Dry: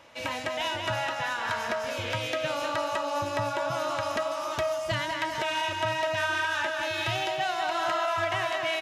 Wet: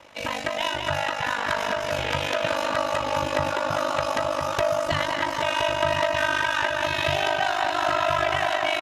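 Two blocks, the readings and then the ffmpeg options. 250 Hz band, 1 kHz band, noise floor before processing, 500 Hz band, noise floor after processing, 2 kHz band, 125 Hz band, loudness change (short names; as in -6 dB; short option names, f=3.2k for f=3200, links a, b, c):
+5.0 dB, +4.5 dB, -34 dBFS, +5.0 dB, -30 dBFS, +4.5 dB, +4.0 dB, +4.5 dB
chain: -filter_complex "[0:a]aeval=exprs='val(0)*sin(2*PI*25*n/s)':c=same,asplit=2[a][b];[b]adelay=1019,lowpass=f=3.3k:p=1,volume=-5.5dB,asplit=2[c][d];[d]adelay=1019,lowpass=f=3.3k:p=1,volume=0.52,asplit=2[e][f];[f]adelay=1019,lowpass=f=3.3k:p=1,volume=0.52,asplit=2[g][h];[h]adelay=1019,lowpass=f=3.3k:p=1,volume=0.52,asplit=2[i][j];[j]adelay=1019,lowpass=f=3.3k:p=1,volume=0.52,asplit=2[k][l];[l]adelay=1019,lowpass=f=3.3k:p=1,volume=0.52,asplit=2[m][n];[n]adelay=1019,lowpass=f=3.3k:p=1,volume=0.52[o];[a][c][e][g][i][k][m][o]amix=inputs=8:normalize=0,volume=6.5dB"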